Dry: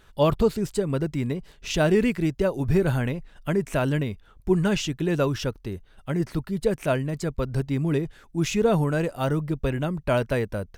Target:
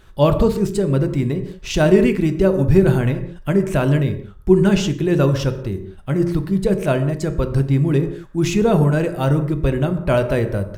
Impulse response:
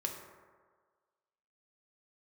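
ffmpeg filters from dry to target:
-filter_complex "[0:a]asplit=2[a][b];[1:a]atrim=start_sample=2205,afade=t=out:st=0.25:d=0.01,atrim=end_sample=11466,lowshelf=f=340:g=8.5[c];[b][c]afir=irnorm=-1:irlink=0,volume=0.5dB[d];[a][d]amix=inputs=2:normalize=0,volume=-2.5dB"

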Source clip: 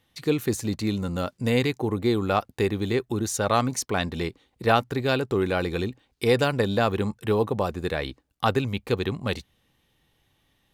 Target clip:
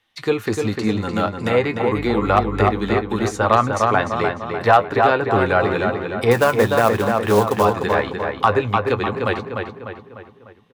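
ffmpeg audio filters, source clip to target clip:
-filter_complex "[0:a]aemphasis=mode=reproduction:type=75kf,agate=range=-10dB:threshold=-48dB:ratio=16:detection=peak,tiltshelf=f=800:g=-6.5,acrossover=split=500|1600[a][b][c];[a]flanger=delay=2.2:depth=9.6:regen=44:speed=1:shape=triangular[d];[c]acompressor=threshold=-45dB:ratio=6[e];[d][b][e]amix=inputs=3:normalize=0,asettb=1/sr,asplit=3[f][g][h];[f]atrim=end=1.974[i];[g]atrim=start=1.97:end=2.65,asetpts=PTS-STARTPTS,afade=t=in:d=0.004:c=qsin,afade=t=out:st=0.676:d=0.004:c=qsin,aeval=exprs='val(0)+0.01*(sin(2*PI*50*n/s)+sin(2*PI*2*50*n/s)/2+sin(2*PI*3*50*n/s)/3+sin(2*PI*4*50*n/s)/4+sin(2*PI*5*50*n/s)/5)':c=same[j];[h]atrim=start=2.646[k];[i][j]acrossfade=d=0.004:c1=hsin:c2=qsin[l];[l][k]acrossfade=d=0.004:c1=qsin:c2=hsin,flanger=delay=8.8:depth=1.3:regen=51:speed=0.31:shape=triangular,asettb=1/sr,asplit=3[m][n][o];[m]atrim=end=6.314[p];[n]atrim=start=6.31:end=7.65,asetpts=PTS-STARTPTS,afade=t=in:d=0.004:c=qsin,afade=t=out:st=1.336:d=0.004:c=qsin,acrusher=bits=4:mode=log:mix=0:aa=0.000001[q];[o]atrim=start=7.646[r];[p][q]acrossfade=d=0.004:c1=hsin:c2=qsin[s];[s][r]acrossfade=d=0.004:c1=qsin:c2=hsin,volume=17.5dB,asoftclip=hard,volume=-17.5dB,asplit=2[t][u];[u]adelay=299,lowpass=f=3.4k:p=1,volume=-4.5dB,asplit=2[v][w];[w]adelay=299,lowpass=f=3.4k:p=1,volume=0.5,asplit=2[x][y];[y]adelay=299,lowpass=f=3.4k:p=1,volume=0.5,asplit=2[z][aa];[aa]adelay=299,lowpass=f=3.4k:p=1,volume=0.5,asplit=2[ab][ac];[ac]adelay=299,lowpass=f=3.4k:p=1,volume=0.5,asplit=2[ad][ae];[ae]adelay=299,lowpass=f=3.4k:p=1,volume=0.5[af];[v][x][z][ab][ad][af]amix=inputs=6:normalize=0[ag];[t][ag]amix=inputs=2:normalize=0,alimiter=level_in=18dB:limit=-1dB:release=50:level=0:latency=1,volume=-2.5dB"

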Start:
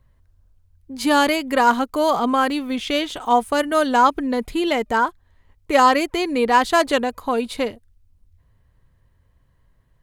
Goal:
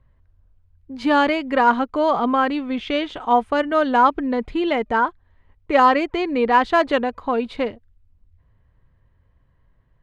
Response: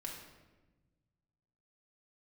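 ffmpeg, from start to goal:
-af "lowpass=2.8k"

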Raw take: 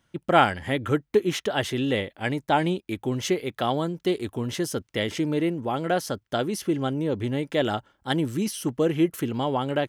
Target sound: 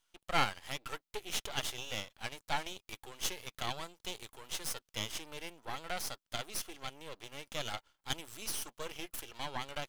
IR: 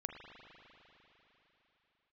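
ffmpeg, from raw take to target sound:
-af "highpass=1.3k,equalizer=f=1.8k:w=2.2:g=-12,aeval=exprs='max(val(0),0)':c=same,volume=1.5dB"

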